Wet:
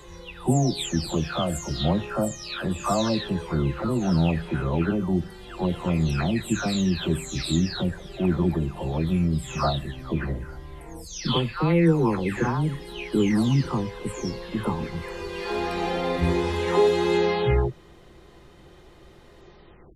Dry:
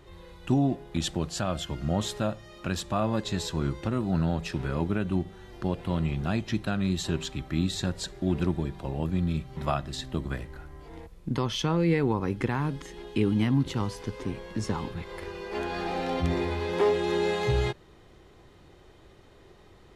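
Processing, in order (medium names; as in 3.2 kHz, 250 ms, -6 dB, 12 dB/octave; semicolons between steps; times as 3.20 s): delay that grows with frequency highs early, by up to 543 ms; trim +5.5 dB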